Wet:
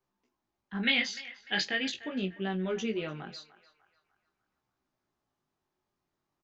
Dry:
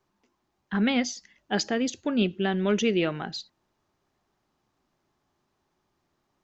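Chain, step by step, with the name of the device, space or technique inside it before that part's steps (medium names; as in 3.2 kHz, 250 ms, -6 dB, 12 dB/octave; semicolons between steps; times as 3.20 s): double-tracked vocal (doubling 27 ms -13.5 dB; chorus 0.42 Hz, delay 15.5 ms, depth 6.8 ms); 0.83–2.04 s: high-order bell 2.7 kHz +14 dB; band-passed feedback delay 298 ms, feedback 45%, band-pass 1.4 kHz, level -15 dB; trim -6.5 dB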